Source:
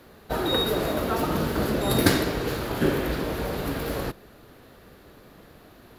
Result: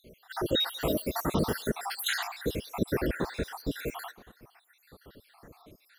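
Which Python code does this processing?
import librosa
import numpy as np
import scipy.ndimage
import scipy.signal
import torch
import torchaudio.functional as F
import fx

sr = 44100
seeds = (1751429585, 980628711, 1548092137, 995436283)

p1 = fx.spec_dropout(x, sr, seeds[0], share_pct=69)
p2 = fx.high_shelf(p1, sr, hz=9200.0, db=9.5, at=(0.81, 1.68))
y = p2 + fx.echo_wet_bandpass(p2, sr, ms=118, feedback_pct=48, hz=1300.0, wet_db=-20, dry=0)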